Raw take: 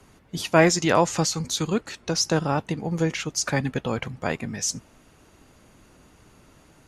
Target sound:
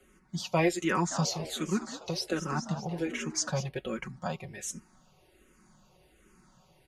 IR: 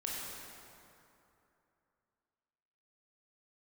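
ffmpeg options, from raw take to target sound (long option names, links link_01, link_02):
-filter_complex "[0:a]aecho=1:1:5.4:0.68,asplit=3[link_01][link_02][link_03];[link_01]afade=type=out:start_time=1.1:duration=0.02[link_04];[link_02]asplit=8[link_05][link_06][link_07][link_08][link_09][link_10][link_11][link_12];[link_06]adelay=203,afreqshift=72,volume=-11.5dB[link_13];[link_07]adelay=406,afreqshift=144,volume=-16.2dB[link_14];[link_08]adelay=609,afreqshift=216,volume=-21dB[link_15];[link_09]adelay=812,afreqshift=288,volume=-25.7dB[link_16];[link_10]adelay=1015,afreqshift=360,volume=-30.4dB[link_17];[link_11]adelay=1218,afreqshift=432,volume=-35.2dB[link_18];[link_12]adelay=1421,afreqshift=504,volume=-39.9dB[link_19];[link_05][link_13][link_14][link_15][link_16][link_17][link_18][link_19]amix=inputs=8:normalize=0,afade=type=in:start_time=1.1:duration=0.02,afade=type=out:start_time=3.67:duration=0.02[link_20];[link_03]afade=type=in:start_time=3.67:duration=0.02[link_21];[link_04][link_20][link_21]amix=inputs=3:normalize=0,asplit=2[link_22][link_23];[link_23]afreqshift=-1.3[link_24];[link_22][link_24]amix=inputs=2:normalize=1,volume=-6.5dB"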